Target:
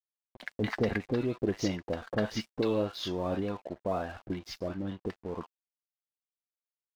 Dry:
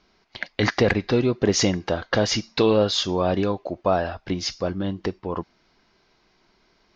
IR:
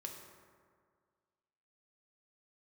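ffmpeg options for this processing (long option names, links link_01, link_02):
-filter_complex "[0:a]aemphasis=mode=reproduction:type=75fm,acrossover=split=810[link_01][link_02];[link_02]adelay=50[link_03];[link_01][link_03]amix=inputs=2:normalize=0,asplit=2[link_04][link_05];[link_05]acompressor=threshold=-32dB:ratio=10,volume=-1dB[link_06];[link_04][link_06]amix=inputs=2:normalize=0,flanger=delay=2.9:depth=1.7:regen=72:speed=0.67:shape=sinusoidal,aeval=exprs='sgn(val(0))*max(abs(val(0))-0.00531,0)':channel_layout=same,volume=-6dB"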